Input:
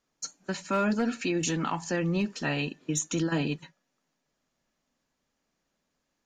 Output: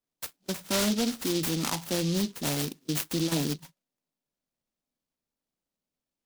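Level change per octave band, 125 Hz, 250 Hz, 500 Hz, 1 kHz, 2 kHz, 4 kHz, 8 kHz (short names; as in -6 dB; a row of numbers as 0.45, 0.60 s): 0.0, -0.5, -1.0, -4.5, -4.0, +6.0, +2.0 dB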